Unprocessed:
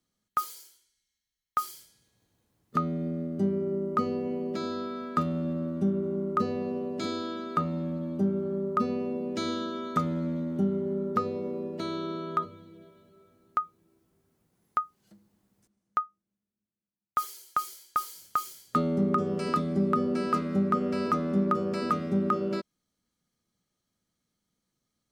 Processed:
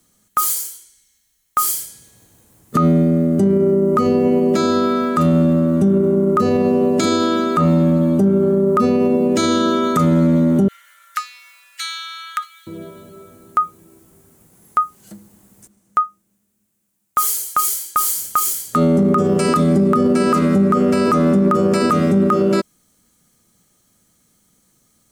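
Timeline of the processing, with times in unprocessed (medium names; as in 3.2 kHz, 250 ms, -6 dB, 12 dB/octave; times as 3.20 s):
10.68–12.67 s: steep high-pass 1.6 kHz
whole clip: resonant high shelf 6.1 kHz +7 dB, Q 1.5; loudness maximiser +25 dB; trim -6.5 dB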